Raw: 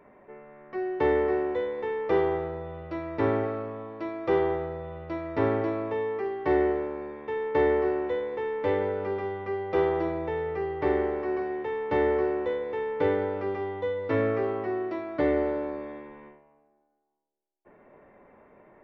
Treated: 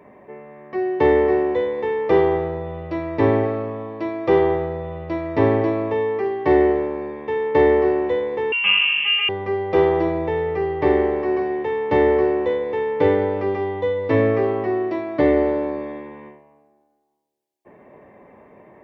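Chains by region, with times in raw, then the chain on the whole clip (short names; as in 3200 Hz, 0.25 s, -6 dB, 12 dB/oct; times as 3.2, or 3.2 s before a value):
8.52–9.29 comb 5 ms + companded quantiser 6-bit + inverted band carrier 3200 Hz
whole clip: HPF 77 Hz; low shelf 160 Hz +4.5 dB; notch 1400 Hz, Q 5.2; gain +7.5 dB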